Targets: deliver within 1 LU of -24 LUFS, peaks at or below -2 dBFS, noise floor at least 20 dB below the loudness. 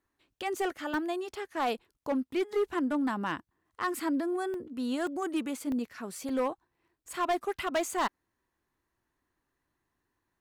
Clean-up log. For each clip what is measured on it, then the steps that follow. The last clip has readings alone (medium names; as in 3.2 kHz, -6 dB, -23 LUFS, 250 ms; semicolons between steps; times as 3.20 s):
clipped samples 1.3%; clipping level -23.5 dBFS; dropouts 5; longest dropout 1.1 ms; loudness -33.0 LUFS; peak level -23.5 dBFS; loudness target -24.0 LUFS
-> clip repair -23.5 dBFS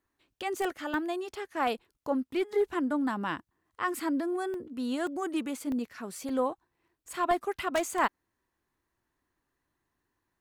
clipped samples 0.0%; dropouts 5; longest dropout 1.1 ms
-> interpolate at 0.94/4.54/5.07/5.72/6.29 s, 1.1 ms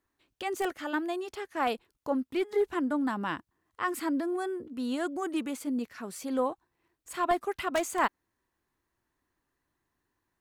dropouts 0; loudness -32.0 LUFS; peak level -14.5 dBFS; loudness target -24.0 LUFS
-> trim +8 dB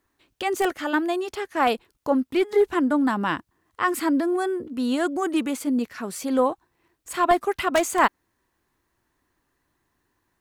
loudness -24.0 LUFS; peak level -6.5 dBFS; noise floor -74 dBFS